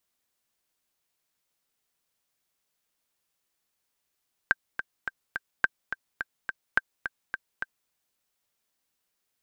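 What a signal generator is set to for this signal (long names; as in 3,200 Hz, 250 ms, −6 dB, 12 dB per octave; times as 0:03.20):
click track 212 BPM, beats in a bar 4, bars 3, 1,570 Hz, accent 10 dB −7 dBFS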